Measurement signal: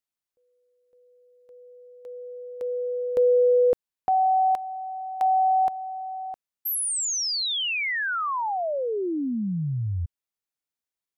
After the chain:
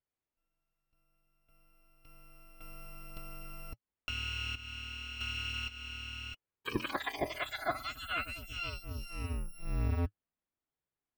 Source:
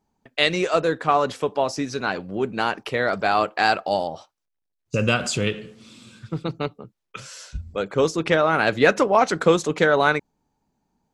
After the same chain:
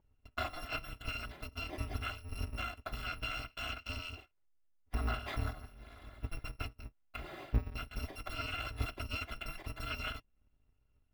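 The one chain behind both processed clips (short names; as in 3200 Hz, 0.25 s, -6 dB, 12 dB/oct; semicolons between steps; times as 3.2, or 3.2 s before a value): FFT order left unsorted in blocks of 256 samples; low shelf 400 Hz +6.5 dB; compressor 6:1, threshold -27 dBFS; flange 0.46 Hz, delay 1.9 ms, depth 4.3 ms, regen -61%; air absorption 470 m; gain +6.5 dB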